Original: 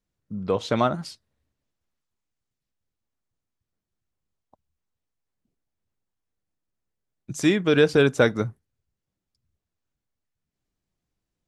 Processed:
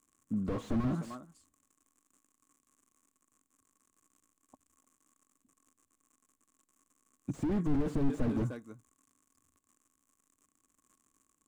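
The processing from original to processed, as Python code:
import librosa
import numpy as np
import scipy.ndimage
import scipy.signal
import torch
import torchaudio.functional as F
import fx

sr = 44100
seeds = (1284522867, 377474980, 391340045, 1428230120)

p1 = fx.vibrato(x, sr, rate_hz=0.62, depth_cents=39.0)
p2 = fx.dmg_crackle(p1, sr, seeds[0], per_s=110.0, level_db=-46.0)
p3 = fx.high_shelf_res(p2, sr, hz=6100.0, db=6.5, q=3.0)
p4 = fx.small_body(p3, sr, hz=(270.0, 1100.0), ring_ms=45, db=13)
p5 = p4 + fx.echo_single(p4, sr, ms=303, db=-23.0, dry=0)
p6 = fx.slew_limit(p5, sr, full_power_hz=18.0)
y = p6 * 10.0 ** (-5.0 / 20.0)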